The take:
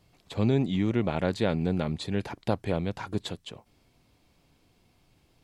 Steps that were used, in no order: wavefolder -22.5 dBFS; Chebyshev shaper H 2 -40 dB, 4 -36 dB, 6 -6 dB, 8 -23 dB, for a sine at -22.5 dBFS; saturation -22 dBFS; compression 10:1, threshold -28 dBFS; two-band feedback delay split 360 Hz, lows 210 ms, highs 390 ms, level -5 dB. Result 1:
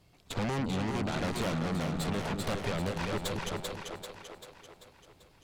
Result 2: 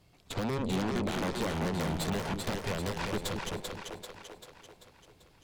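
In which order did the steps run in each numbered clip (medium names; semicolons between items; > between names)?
saturation > Chebyshev shaper > two-band feedback delay > compression > wavefolder; compression > Chebyshev shaper > two-band feedback delay > wavefolder > saturation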